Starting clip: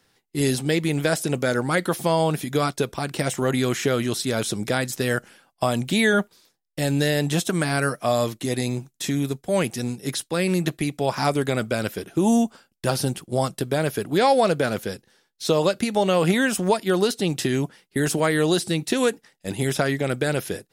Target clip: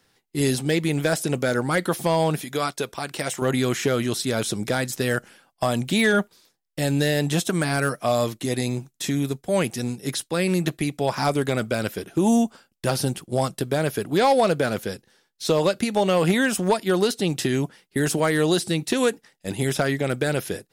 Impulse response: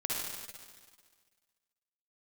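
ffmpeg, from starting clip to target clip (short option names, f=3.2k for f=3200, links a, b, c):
-filter_complex "[0:a]asettb=1/sr,asplit=3[a][b][c];[a]atrim=end=2.414[d];[b]atrim=start=2.41:end=3.42,asetpts=PTS-STARTPTS,afade=t=in:d=0.004:c=qsin,afade=t=out:st=1.006:d=0.004:c=qsin,lowshelf=f=350:g=-9.5[e];[c]atrim=start=3.416[f];[d][e]acrossfade=d=0.004:c1=hsin:c2=qsin[g];[g][f]acrossfade=d=0.004:c1=qsin:c2=hsin,volume=12dB,asoftclip=hard,volume=-12dB"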